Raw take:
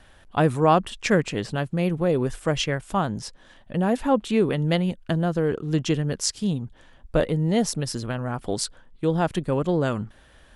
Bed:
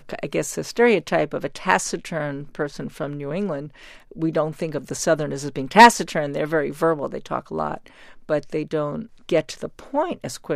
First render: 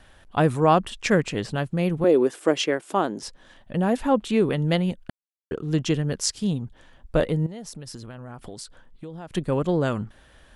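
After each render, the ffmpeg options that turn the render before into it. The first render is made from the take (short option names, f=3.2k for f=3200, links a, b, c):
-filter_complex "[0:a]asettb=1/sr,asplit=3[a][b][c];[a]atrim=end=2.044[d];[b]atrim=start=2.04:end=3.23,asetpts=PTS-STARTPTS,afade=t=in:d=0.004:c=qsin,afade=t=out:st=1.186:d=0.004:c=qsin,highpass=f=330:t=q:w=2.4[e];[c]atrim=start=3.226[f];[d][e]acrossfade=d=0.004:c1=hsin:c2=qsin[g];[g][f]acrossfade=d=0.004:c1=qsin:c2=hsin,asettb=1/sr,asplit=3[h][i][j];[h]atrim=end=7.464[k];[i]atrim=start=7.46:end=9.32,asetpts=PTS-STARTPTS,afade=t=in:d=0.004:c=qsin,afade=t=out:st=1.856:d=0.004:c=qsin,acompressor=threshold=-35dB:ratio=6:attack=3.2:release=140:knee=1:detection=peak[l];[j]atrim=start=9.316[m];[k][l]acrossfade=d=0.004:c1=hsin:c2=qsin[n];[n][m]acrossfade=d=0.004:c1=qsin:c2=hsin,asplit=3[o][p][q];[o]atrim=end=5.1,asetpts=PTS-STARTPTS,afade=t=out:st=5.096:d=0.004:c=hsin[r];[p]atrim=start=5.1:end=5.51,asetpts=PTS-STARTPTS,volume=0[s];[q]atrim=start=5.51,asetpts=PTS-STARTPTS,afade=t=in:d=0.004:c=hsin[t];[r][s][t]concat=n=3:v=0:a=1"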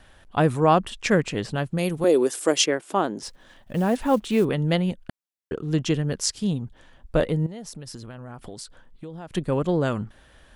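-filter_complex "[0:a]asettb=1/sr,asplit=3[a][b][c];[a]atrim=end=1.784[d];[b]atrim=start=1.78:end=2.66,asetpts=PTS-STARTPTS,afade=t=in:d=0.004:c=qsin,afade=t=out:st=0.876:d=0.004:c=qsin,bass=f=250:g=-4,treble=f=4k:g=13[e];[c]atrim=start=2.656[f];[d][e]acrossfade=d=0.004:c1=hsin:c2=qsin[g];[g][f]acrossfade=d=0.004:c1=qsin:c2=hsin,asettb=1/sr,asplit=3[h][i][j];[h]atrim=end=3.254[k];[i]atrim=start=3.25:end=4.45,asetpts=PTS-STARTPTS,afade=t=in:d=0.004:c=qsin,afade=t=out:st=1.196:d=0.004:c=qsin,acrusher=bits=7:mode=log:mix=0:aa=0.000001[l];[j]atrim=start=4.446[m];[k][l]acrossfade=d=0.004:c1=hsin:c2=qsin[n];[n][m]acrossfade=d=0.004:c1=qsin:c2=hsin"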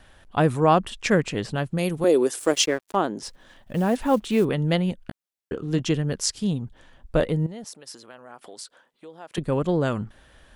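-filter_complex "[0:a]asplit=3[a][b][c];[a]afade=t=out:st=2.38:d=0.02[d];[b]aeval=exprs='sgn(val(0))*max(abs(val(0))-0.00944,0)':c=same,afade=t=in:st=2.38:d=0.02,afade=t=out:st=2.95:d=0.02[e];[c]afade=t=in:st=2.95:d=0.02[f];[d][e][f]amix=inputs=3:normalize=0,asettb=1/sr,asplit=3[g][h][i];[g]atrim=end=5.064[j];[h]atrim=start=5.06:end=5.8,asetpts=PTS-STARTPTS,afade=t=in:d=0.004:c=qsin,afade=t=out:st=0.736:d=0.004:c=qsin,asplit=2[k][l];[l]adelay=17,volume=-10dB[m];[k][m]amix=inputs=2:normalize=0,atrim=end_sample=32634[n];[i]atrim=start=5.796[o];[j][n]acrossfade=d=0.004:c1=hsin:c2=qsin[p];[p][o]acrossfade=d=0.004:c1=qsin:c2=hsin,asettb=1/sr,asplit=3[q][r][s];[q]atrim=end=7.644[t];[r]atrim=start=7.64:end=9.38,asetpts=PTS-STARTPTS,afade=t=in:d=0.004:c=qsin,afade=t=out:st=1.736:d=0.004:c=qsin,highpass=430[u];[s]atrim=start=9.376[v];[t][u]acrossfade=d=0.004:c1=hsin:c2=qsin[w];[w][v]acrossfade=d=0.004:c1=qsin:c2=hsin"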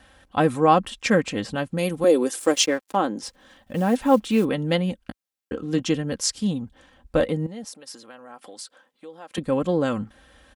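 -af "highpass=51,aecho=1:1:3.8:0.52"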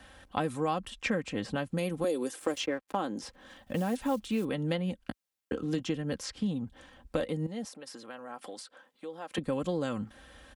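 -filter_complex "[0:a]acrossover=split=110|3100[a][b][c];[a]acompressor=threshold=-49dB:ratio=4[d];[b]acompressor=threshold=-30dB:ratio=4[e];[c]acompressor=threshold=-48dB:ratio=4[f];[d][e][f]amix=inputs=3:normalize=0"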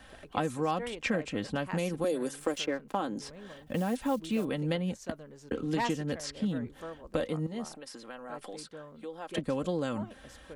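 -filter_complex "[1:a]volume=-23dB[a];[0:a][a]amix=inputs=2:normalize=0"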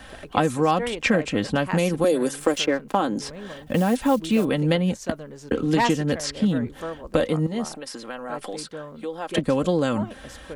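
-af "volume=10dB"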